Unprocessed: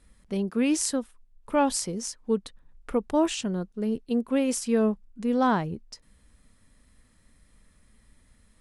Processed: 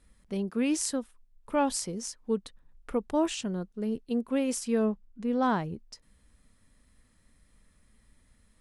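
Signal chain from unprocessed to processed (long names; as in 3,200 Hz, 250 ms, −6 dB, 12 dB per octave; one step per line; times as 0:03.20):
0:04.84–0:05.42: high-shelf EQ 7,900 Hz → 5,100 Hz −10 dB
level −3.5 dB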